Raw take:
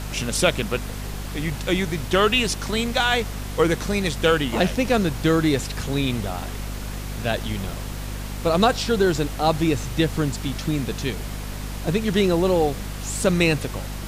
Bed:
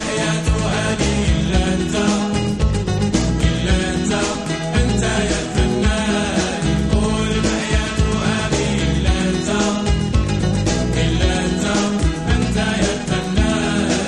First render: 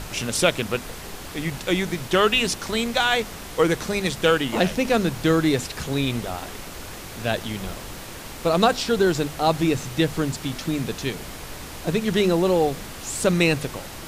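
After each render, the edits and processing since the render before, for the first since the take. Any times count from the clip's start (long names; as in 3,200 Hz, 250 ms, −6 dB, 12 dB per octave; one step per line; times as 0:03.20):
mains-hum notches 50/100/150/200/250 Hz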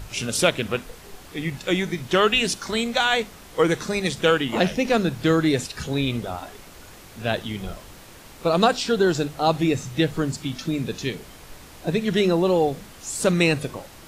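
noise reduction from a noise print 8 dB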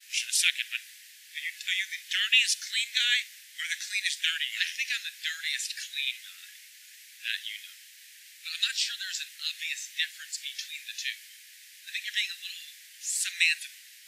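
Butterworth high-pass 1,700 Hz 72 dB per octave
downward expander −46 dBFS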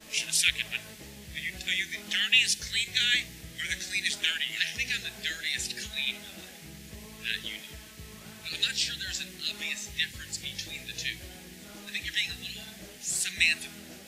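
mix in bed −30.5 dB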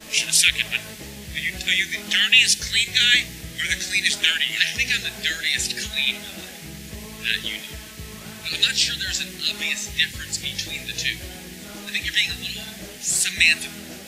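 level +9 dB
brickwall limiter −2 dBFS, peak gain reduction 3 dB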